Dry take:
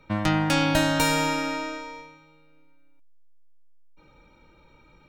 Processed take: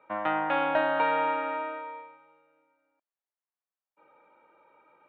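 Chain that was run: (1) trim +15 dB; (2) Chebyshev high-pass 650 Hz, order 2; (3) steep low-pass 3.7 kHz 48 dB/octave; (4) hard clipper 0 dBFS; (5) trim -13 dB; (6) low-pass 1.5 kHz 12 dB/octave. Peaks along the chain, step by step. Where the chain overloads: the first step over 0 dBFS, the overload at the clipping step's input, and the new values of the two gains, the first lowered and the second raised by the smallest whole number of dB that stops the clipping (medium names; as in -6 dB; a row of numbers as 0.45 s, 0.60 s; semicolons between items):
+6.5 dBFS, +4.5 dBFS, +3.0 dBFS, 0.0 dBFS, -13.0 dBFS, -14.0 dBFS; step 1, 3.0 dB; step 1 +12 dB, step 5 -10 dB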